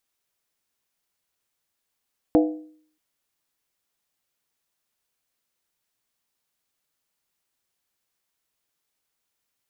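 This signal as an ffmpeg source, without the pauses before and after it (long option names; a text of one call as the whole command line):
ffmpeg -f lavfi -i "aevalsrc='0.251*pow(10,-3*t/0.57)*sin(2*PI*309*t)+0.141*pow(10,-3*t/0.451)*sin(2*PI*492.5*t)+0.0794*pow(10,-3*t/0.39)*sin(2*PI*660*t)+0.0447*pow(10,-3*t/0.376)*sin(2*PI*709.5*t)+0.0251*pow(10,-3*t/0.35)*sin(2*PI*819.8*t)':duration=0.63:sample_rate=44100" out.wav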